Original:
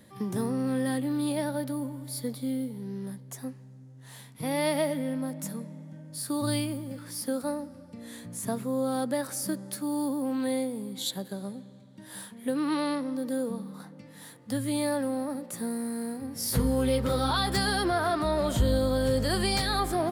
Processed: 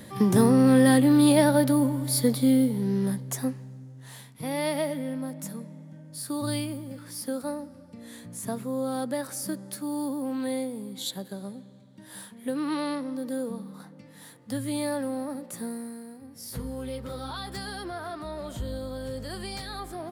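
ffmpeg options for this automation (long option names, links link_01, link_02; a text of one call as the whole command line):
ffmpeg -i in.wav -af "volume=10.5dB,afade=type=out:start_time=3.14:duration=1.21:silence=0.266073,afade=type=out:start_time=15.59:duration=0.45:silence=0.375837" out.wav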